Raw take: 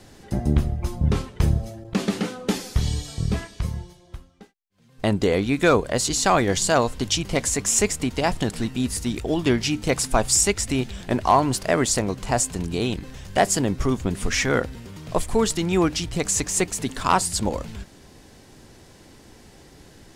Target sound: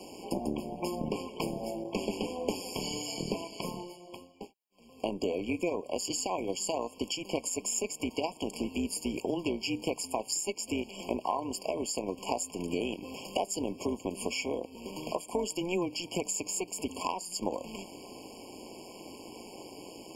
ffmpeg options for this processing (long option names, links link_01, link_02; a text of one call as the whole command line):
ffmpeg -i in.wav -af "highpass=frequency=240:width=0.5412,highpass=frequency=240:width=1.3066,acompressor=threshold=-35dB:ratio=6,tremolo=f=180:d=0.621,afftfilt=real='re*eq(mod(floor(b*sr/1024/1100),2),0)':imag='im*eq(mod(floor(b*sr/1024/1100),2),0)':win_size=1024:overlap=0.75,volume=8dB" out.wav